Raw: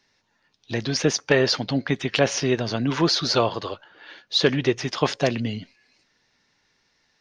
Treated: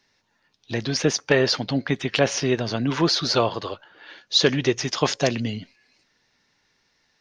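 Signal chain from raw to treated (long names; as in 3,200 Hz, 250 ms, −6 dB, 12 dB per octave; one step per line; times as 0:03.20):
0:04.21–0:05.51: low-pass with resonance 6,900 Hz, resonance Q 2.3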